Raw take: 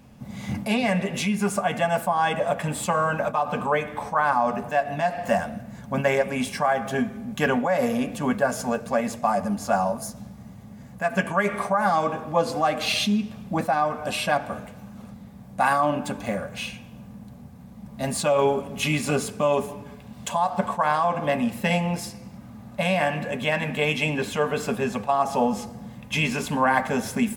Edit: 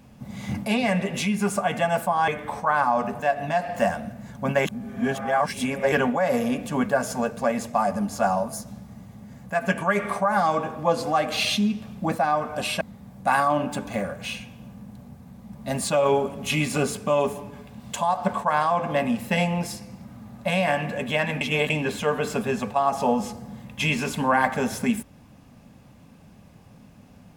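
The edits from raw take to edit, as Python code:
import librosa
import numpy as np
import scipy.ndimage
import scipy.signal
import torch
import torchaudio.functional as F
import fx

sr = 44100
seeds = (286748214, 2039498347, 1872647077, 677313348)

y = fx.edit(x, sr, fx.cut(start_s=2.28, length_s=1.49),
    fx.reverse_span(start_s=6.14, length_s=1.27),
    fx.cut(start_s=14.3, length_s=0.84),
    fx.reverse_span(start_s=23.74, length_s=0.29), tone=tone)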